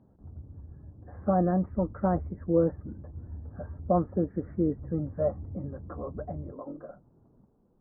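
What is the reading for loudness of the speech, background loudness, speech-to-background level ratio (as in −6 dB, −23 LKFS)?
−30.0 LKFS, −44.5 LKFS, 14.5 dB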